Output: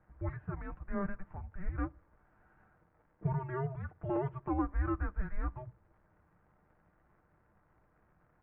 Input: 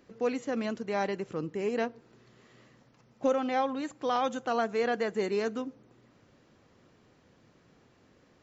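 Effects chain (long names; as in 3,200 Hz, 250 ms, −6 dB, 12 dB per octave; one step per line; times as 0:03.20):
comb filter 7 ms, depth 59%
surface crackle 210 per second −46 dBFS
single-sideband voice off tune −390 Hz 320–2,100 Hz
level −5 dB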